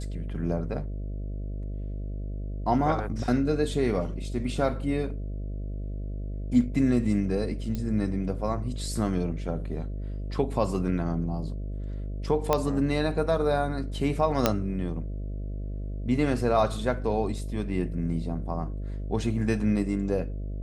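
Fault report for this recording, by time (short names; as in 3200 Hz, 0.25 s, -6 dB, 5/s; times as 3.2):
buzz 50 Hz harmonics 13 -33 dBFS
7.75 pop -19 dBFS
12.53 pop -9 dBFS
14.46 pop -5 dBFS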